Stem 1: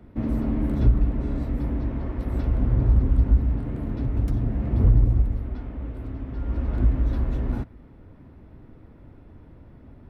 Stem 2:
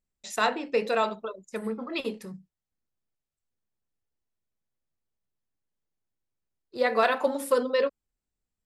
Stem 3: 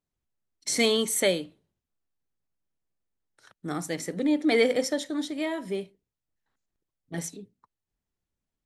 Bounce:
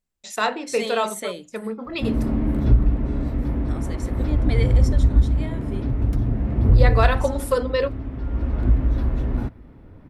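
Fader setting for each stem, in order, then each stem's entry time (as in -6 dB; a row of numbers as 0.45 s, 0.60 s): +2.5 dB, +2.5 dB, -7.0 dB; 1.85 s, 0.00 s, 0.00 s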